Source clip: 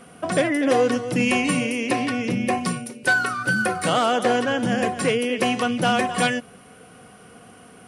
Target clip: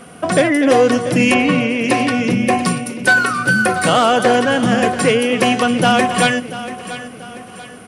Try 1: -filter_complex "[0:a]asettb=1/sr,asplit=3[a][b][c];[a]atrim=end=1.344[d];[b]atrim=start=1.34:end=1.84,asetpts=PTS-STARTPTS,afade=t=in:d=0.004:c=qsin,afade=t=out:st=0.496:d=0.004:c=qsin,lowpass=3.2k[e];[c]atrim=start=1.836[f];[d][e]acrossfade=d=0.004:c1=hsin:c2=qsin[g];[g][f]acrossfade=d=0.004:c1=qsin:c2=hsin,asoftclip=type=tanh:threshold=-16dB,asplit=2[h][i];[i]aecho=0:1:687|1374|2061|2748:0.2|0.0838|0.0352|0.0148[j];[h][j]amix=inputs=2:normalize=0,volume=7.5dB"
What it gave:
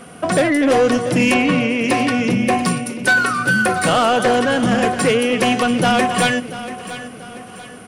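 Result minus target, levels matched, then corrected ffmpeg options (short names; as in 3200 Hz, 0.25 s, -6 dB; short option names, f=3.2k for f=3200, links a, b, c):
soft clip: distortion +12 dB
-filter_complex "[0:a]asettb=1/sr,asplit=3[a][b][c];[a]atrim=end=1.344[d];[b]atrim=start=1.34:end=1.84,asetpts=PTS-STARTPTS,afade=t=in:d=0.004:c=qsin,afade=t=out:st=0.496:d=0.004:c=qsin,lowpass=3.2k[e];[c]atrim=start=1.836[f];[d][e]acrossfade=d=0.004:c1=hsin:c2=qsin[g];[g][f]acrossfade=d=0.004:c1=qsin:c2=hsin,asoftclip=type=tanh:threshold=-7.5dB,asplit=2[h][i];[i]aecho=0:1:687|1374|2061|2748:0.2|0.0838|0.0352|0.0148[j];[h][j]amix=inputs=2:normalize=0,volume=7.5dB"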